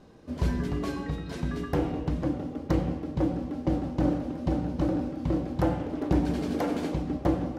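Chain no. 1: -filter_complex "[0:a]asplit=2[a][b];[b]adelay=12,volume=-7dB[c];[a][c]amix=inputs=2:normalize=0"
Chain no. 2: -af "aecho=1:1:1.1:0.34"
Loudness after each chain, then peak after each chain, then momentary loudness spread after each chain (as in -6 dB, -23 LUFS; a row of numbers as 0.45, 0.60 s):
-28.5, -29.5 LUFS; -10.0, -10.0 dBFS; 5, 5 LU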